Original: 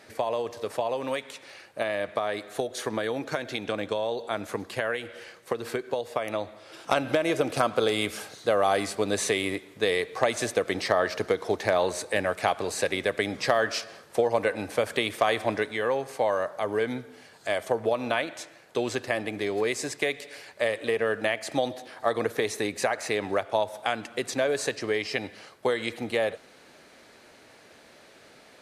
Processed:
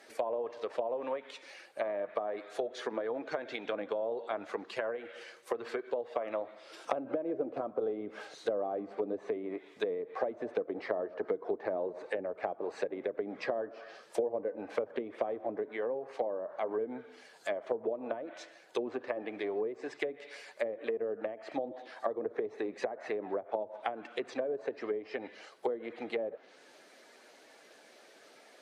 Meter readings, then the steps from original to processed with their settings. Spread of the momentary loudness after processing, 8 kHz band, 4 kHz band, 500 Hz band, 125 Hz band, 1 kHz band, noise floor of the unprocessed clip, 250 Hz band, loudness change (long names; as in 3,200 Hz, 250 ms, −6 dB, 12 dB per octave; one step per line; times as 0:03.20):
6 LU, below −20 dB, −17.5 dB, −7.0 dB, below −15 dB, −10.5 dB, −54 dBFS, −8.5 dB, −9.0 dB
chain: spectral magnitudes quantised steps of 15 dB
treble cut that deepens with the level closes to 450 Hz, closed at −23 dBFS
high-pass filter 320 Hz 12 dB per octave
level −3.5 dB